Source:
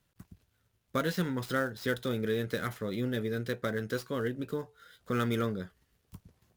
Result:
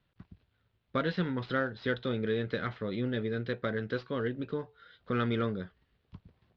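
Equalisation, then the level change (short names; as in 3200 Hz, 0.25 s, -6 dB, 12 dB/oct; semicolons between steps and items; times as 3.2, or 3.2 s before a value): steep low-pass 4200 Hz 36 dB/oct; 0.0 dB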